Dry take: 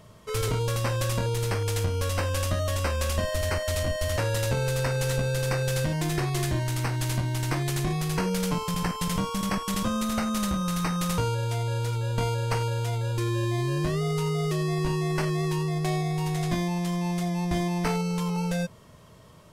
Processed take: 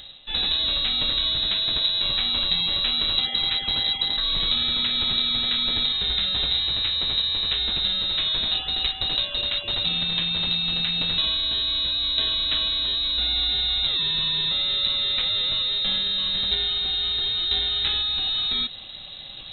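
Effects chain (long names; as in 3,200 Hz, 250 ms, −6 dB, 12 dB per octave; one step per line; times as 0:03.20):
healed spectral selection 0:04.01–0:04.39, 260–1,800 Hz both
in parallel at −4 dB: sample-and-hold swept by an LFO 26×, swing 60% 3.7 Hz
on the sum: voice inversion scrambler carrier 3,900 Hz
low-shelf EQ 470 Hz +10 dB
reversed playback
upward compression, threshold −26 dBFS
reversed playback
low-shelf EQ 84 Hz +10 dB
level −2 dB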